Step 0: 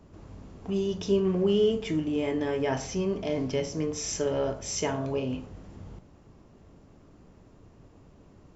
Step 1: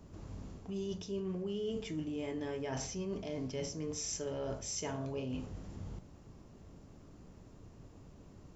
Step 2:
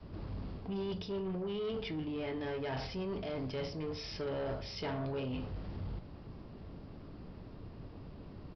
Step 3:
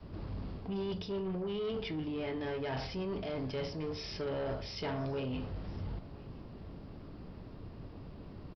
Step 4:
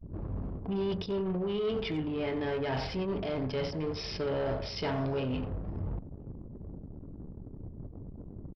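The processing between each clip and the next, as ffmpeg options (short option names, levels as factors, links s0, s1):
-af "bass=f=250:g=3,treble=f=4000:g=6,areverse,acompressor=threshold=0.0224:ratio=6,areverse,volume=0.708"
-af "adynamicequalizer=threshold=0.00282:dfrequency=240:dqfactor=0.89:tfrequency=240:tqfactor=0.89:attack=5:release=100:ratio=0.375:range=2.5:mode=cutabove:tftype=bell,aresample=11025,asoftclip=type=tanh:threshold=0.0112,aresample=44100,volume=2.11"
-af "aecho=1:1:1013:0.075,volume=1.12"
-filter_complex "[0:a]asplit=2[s0][s1];[s1]adelay=90,highpass=300,lowpass=3400,asoftclip=type=hard:threshold=0.01,volume=0.398[s2];[s0][s2]amix=inputs=2:normalize=0,anlmdn=0.0398,volume=1.68"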